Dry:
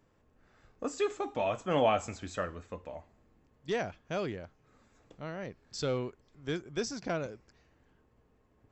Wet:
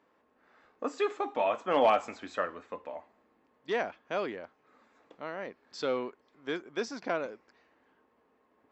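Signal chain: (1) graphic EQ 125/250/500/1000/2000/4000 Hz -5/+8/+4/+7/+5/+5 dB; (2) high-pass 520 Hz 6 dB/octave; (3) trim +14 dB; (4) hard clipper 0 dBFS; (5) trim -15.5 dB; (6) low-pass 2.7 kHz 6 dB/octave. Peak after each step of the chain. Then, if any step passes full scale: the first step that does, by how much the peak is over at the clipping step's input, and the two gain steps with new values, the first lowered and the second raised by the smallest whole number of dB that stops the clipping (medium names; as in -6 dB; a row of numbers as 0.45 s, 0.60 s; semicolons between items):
-8.0 dBFS, -10.0 dBFS, +4.0 dBFS, 0.0 dBFS, -15.5 dBFS, -15.5 dBFS; step 3, 4.0 dB; step 3 +10 dB, step 5 -11.5 dB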